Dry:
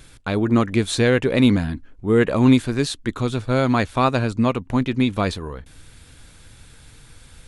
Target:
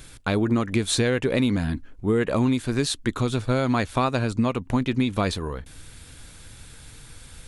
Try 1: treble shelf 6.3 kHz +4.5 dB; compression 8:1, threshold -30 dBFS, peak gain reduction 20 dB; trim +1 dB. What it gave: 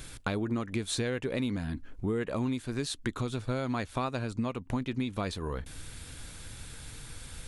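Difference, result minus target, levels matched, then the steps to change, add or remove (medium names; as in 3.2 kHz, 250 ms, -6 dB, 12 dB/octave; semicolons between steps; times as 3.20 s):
compression: peak gain reduction +9.5 dB
change: compression 8:1, threshold -19 dBFS, peak gain reduction 10.5 dB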